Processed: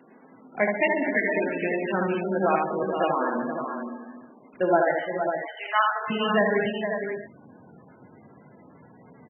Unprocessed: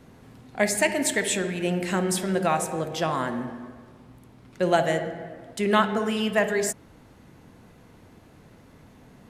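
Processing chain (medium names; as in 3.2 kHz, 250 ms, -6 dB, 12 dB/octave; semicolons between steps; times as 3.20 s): high-pass 220 Hz 24 dB/octave, from 4.91 s 760 Hz, from 6.10 s 130 Hz; multi-tap echo 76/142/146/196/466/546 ms -3.5/-15.5/-18.5/-13.5/-8/-7.5 dB; MP3 8 kbps 22.05 kHz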